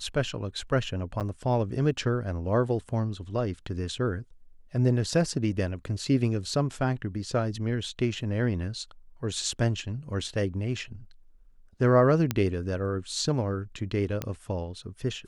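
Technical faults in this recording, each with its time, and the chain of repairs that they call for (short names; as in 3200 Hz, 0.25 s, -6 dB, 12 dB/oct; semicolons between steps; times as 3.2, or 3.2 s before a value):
1.2–1.21 gap 8.2 ms
12.31 pop -11 dBFS
14.22 pop -15 dBFS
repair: de-click; interpolate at 1.2, 8.2 ms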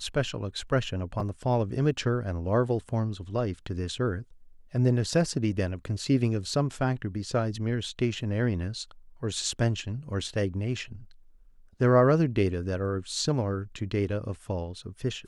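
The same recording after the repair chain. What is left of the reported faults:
none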